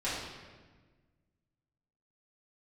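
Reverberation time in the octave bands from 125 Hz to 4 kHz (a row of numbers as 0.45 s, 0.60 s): 2.1 s, 1.9 s, 1.5 s, 1.3 s, 1.3 s, 1.1 s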